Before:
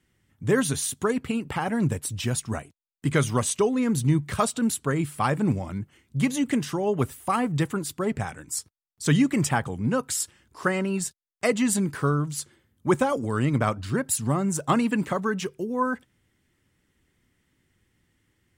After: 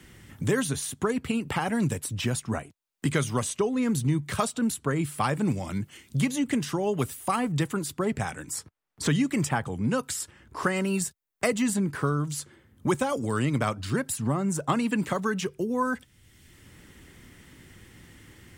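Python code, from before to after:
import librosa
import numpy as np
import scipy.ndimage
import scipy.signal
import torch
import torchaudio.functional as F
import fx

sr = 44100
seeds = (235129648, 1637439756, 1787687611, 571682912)

y = fx.high_shelf(x, sr, hz=fx.line((10.75, 6700.0), (11.69, 11000.0)), db=12.0, at=(10.75, 11.69), fade=0.02)
y = fx.band_squash(y, sr, depth_pct=70)
y = y * 10.0 ** (-2.5 / 20.0)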